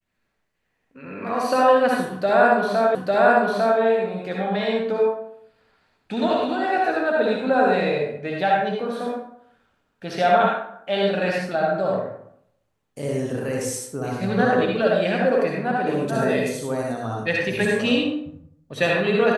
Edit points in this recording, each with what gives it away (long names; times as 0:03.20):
0:02.95: the same again, the last 0.85 s